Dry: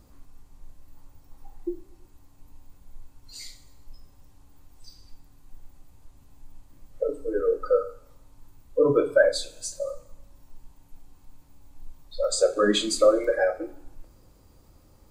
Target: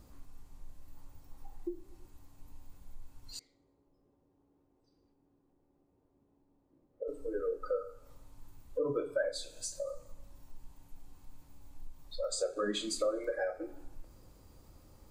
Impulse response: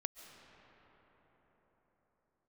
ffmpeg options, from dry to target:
-filter_complex "[0:a]acompressor=threshold=-37dB:ratio=2,asettb=1/sr,asplit=3[a][b][c];[a]atrim=end=3.394[d];[b]atrim=start=3.39:end=7.08,asetpts=PTS-STARTPTS,afade=t=in:d=0.004:c=qsin,afade=t=out:st=3.686:d=0.004:c=qsin,bandpass=f=380:t=q:w=1.9:csg=0[e];[c]atrim=start=7.076[f];[d][e]acrossfade=d=0.004:c1=hsin:c2=qsin[g];[g][f]acrossfade=d=0.004:c1=qsin:c2=hsin,volume=-2dB"

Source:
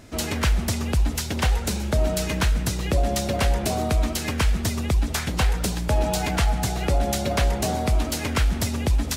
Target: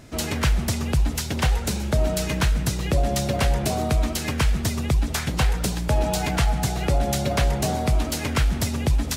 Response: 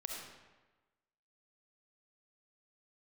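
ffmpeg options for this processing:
-af "equalizer=f=140:w=7.7:g=9"

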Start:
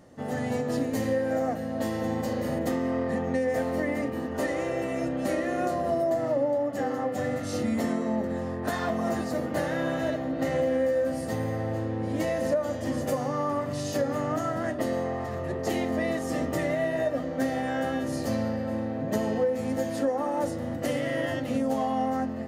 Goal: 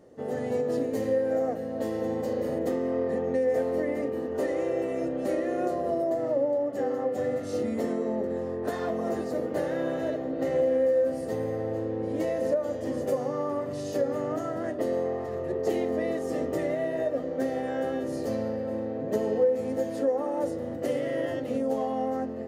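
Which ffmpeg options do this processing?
-af "equalizer=f=430:t=o:w=0.87:g=13.5,volume=-7dB"

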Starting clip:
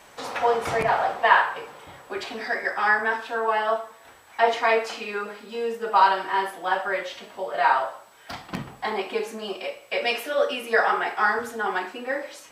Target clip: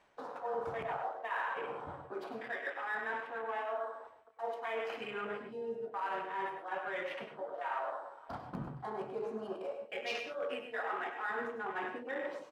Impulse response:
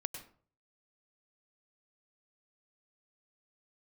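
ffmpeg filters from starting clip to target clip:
-filter_complex "[0:a]adynamicsmooth=sensitivity=5:basefreq=2.8k,aemphasis=mode=production:type=cd,areverse,acompressor=threshold=-40dB:ratio=5,areverse,asplit=2[a][b];[b]adelay=466.5,volume=-16dB,highshelf=f=4k:g=-10.5[c];[a][c]amix=inputs=2:normalize=0,afwtdn=0.00631[d];[1:a]atrim=start_sample=2205,afade=t=out:st=0.2:d=0.01,atrim=end_sample=9261[e];[d][e]afir=irnorm=-1:irlink=0,volume=3dB"

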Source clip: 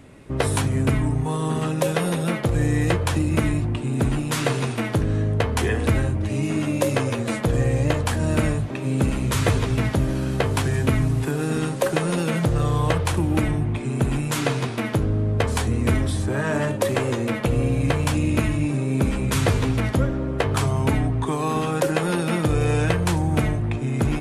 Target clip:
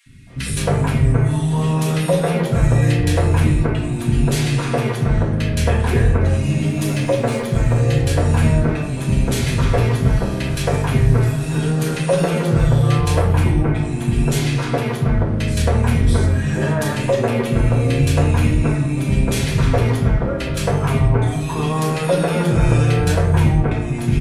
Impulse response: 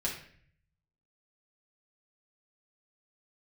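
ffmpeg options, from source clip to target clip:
-filter_complex "[0:a]asettb=1/sr,asplit=3[a][b][c];[a]atrim=end=6.704[d];[b]atrim=start=6.7:end=7.8,asetpts=PTS-STARTPTS,afade=t=in:d=0.004:c=qsin,afade=t=out:st=1.096:d=0.004:c=qsin,aeval=exprs='sgn(val(0))*max(abs(val(0))-0.00841,0)':c=same[e];[c]atrim=start=7.796[f];[d][e]acrossfade=d=0.004:c1=hsin:c2=qsin[g];[g][f]acrossfade=d=0.004:c1=qsin:c2=hsin,acrossover=split=250|1800[h][i][j];[h]adelay=60[k];[i]adelay=270[l];[k][l][j]amix=inputs=3:normalize=0[m];[1:a]atrim=start_sample=2205[n];[m][n]afir=irnorm=-1:irlink=0"

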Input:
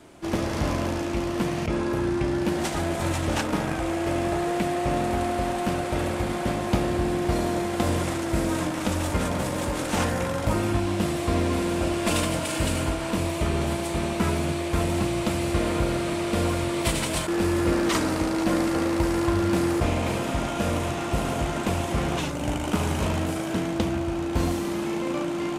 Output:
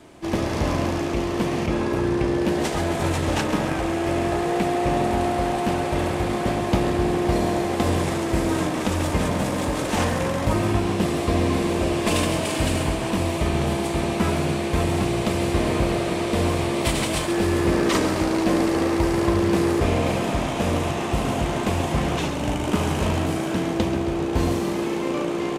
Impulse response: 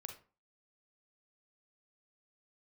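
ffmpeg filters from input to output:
-filter_complex "[0:a]bandreject=f=1.4k:w=15,asplit=9[a][b][c][d][e][f][g][h][i];[b]adelay=134,afreqshift=64,volume=-10.5dB[j];[c]adelay=268,afreqshift=128,volume=-14.2dB[k];[d]adelay=402,afreqshift=192,volume=-18dB[l];[e]adelay=536,afreqshift=256,volume=-21.7dB[m];[f]adelay=670,afreqshift=320,volume=-25.5dB[n];[g]adelay=804,afreqshift=384,volume=-29.2dB[o];[h]adelay=938,afreqshift=448,volume=-33dB[p];[i]adelay=1072,afreqshift=512,volume=-36.7dB[q];[a][j][k][l][m][n][o][p][q]amix=inputs=9:normalize=0,asplit=2[r][s];[1:a]atrim=start_sample=2205,lowpass=7.8k[t];[s][t]afir=irnorm=-1:irlink=0,volume=-5dB[u];[r][u]amix=inputs=2:normalize=0"

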